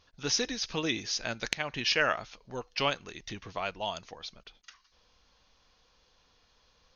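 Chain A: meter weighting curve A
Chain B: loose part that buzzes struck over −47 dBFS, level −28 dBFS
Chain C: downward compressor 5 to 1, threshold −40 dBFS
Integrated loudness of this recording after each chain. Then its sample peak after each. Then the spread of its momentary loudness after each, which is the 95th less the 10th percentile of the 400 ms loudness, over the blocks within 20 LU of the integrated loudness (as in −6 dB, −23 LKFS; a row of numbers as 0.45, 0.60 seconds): −31.5, −31.5, −43.0 LKFS; −6.5, −9.0, −19.0 dBFS; 17, 14, 11 LU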